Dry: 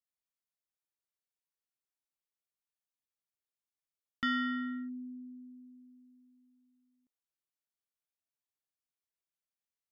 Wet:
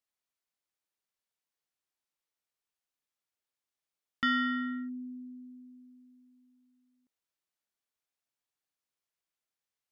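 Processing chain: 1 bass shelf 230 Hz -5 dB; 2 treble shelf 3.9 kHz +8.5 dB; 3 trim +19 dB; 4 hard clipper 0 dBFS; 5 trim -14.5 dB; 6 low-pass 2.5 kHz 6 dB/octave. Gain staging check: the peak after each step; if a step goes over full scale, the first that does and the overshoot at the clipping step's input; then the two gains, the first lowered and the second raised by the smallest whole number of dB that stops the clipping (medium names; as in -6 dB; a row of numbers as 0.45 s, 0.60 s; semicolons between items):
-25.5 dBFS, -23.5 dBFS, -4.5 dBFS, -4.5 dBFS, -19.0 dBFS, -21.0 dBFS; nothing clips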